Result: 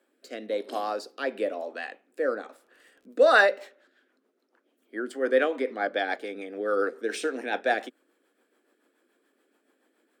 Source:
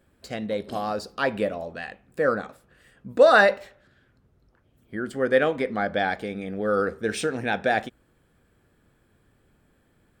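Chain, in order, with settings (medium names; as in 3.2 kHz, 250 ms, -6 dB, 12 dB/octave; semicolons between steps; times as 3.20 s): steep high-pass 260 Hz 48 dB/octave; 2.45–3.29 s: crackle 36 per s -48 dBFS; rotary cabinet horn 1 Hz, later 7 Hz, at 3.03 s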